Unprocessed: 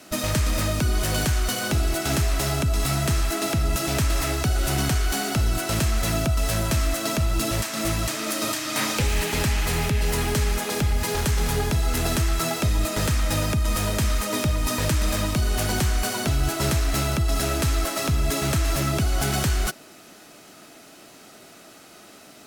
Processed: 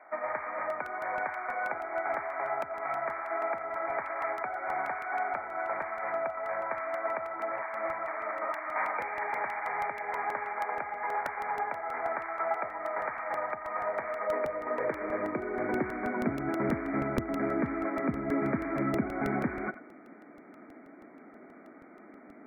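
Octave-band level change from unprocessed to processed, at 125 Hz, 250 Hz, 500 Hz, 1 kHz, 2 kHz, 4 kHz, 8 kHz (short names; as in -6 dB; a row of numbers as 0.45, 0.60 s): -21.5 dB, -7.0 dB, -3.5 dB, -1.0 dB, -5.0 dB, under -30 dB, under -35 dB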